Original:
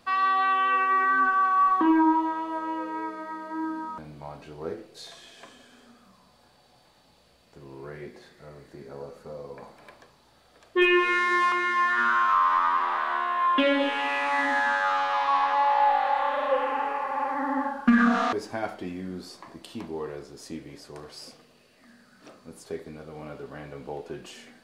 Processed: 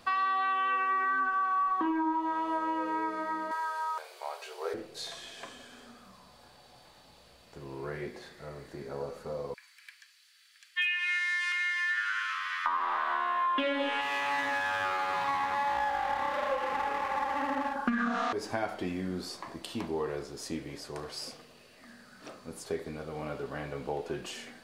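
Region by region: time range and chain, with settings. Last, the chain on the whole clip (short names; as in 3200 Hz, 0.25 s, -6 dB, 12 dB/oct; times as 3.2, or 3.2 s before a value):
3.51–4.74 brick-wall FIR high-pass 360 Hz + tilt +2.5 dB/oct
9.54–12.66 steep high-pass 1700 Hz + notch 3700 Hz, Q 15
14.01–17.76 half-wave gain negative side -12 dB + HPF 140 Hz 6 dB/oct + doubler 48 ms -13.5 dB
whole clip: bell 230 Hz -3 dB 1.7 oct; compressor, threshold -31 dBFS; gain +3.5 dB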